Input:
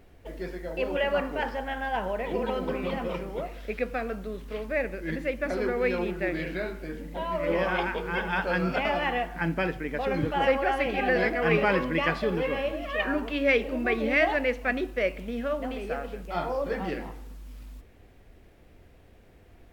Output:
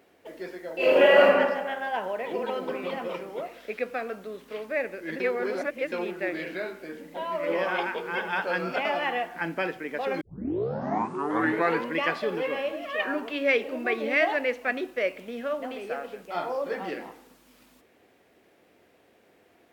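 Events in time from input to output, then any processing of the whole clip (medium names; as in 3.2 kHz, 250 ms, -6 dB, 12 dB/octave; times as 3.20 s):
0.76–1.26 s: reverb throw, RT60 1.3 s, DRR -10.5 dB
5.20–5.92 s: reverse
10.21 s: tape start 1.74 s
whole clip: high-pass 290 Hz 12 dB/octave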